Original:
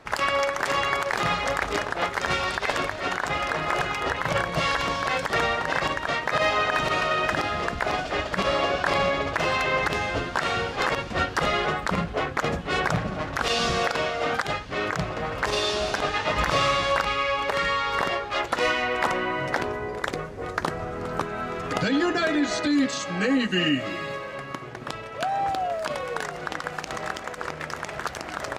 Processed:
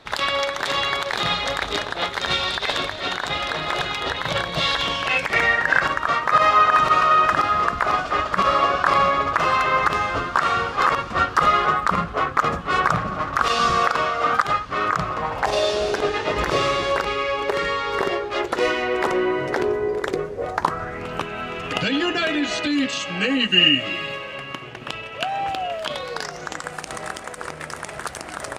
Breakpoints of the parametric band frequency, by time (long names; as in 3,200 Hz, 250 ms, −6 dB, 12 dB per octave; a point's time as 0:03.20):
parametric band +13.5 dB 0.48 octaves
0:04.74 3,700 Hz
0:06.07 1,200 Hz
0:15.12 1,200 Hz
0:15.96 390 Hz
0:20.28 390 Hz
0:21.08 2,800 Hz
0:25.75 2,800 Hz
0:26.75 9,200 Hz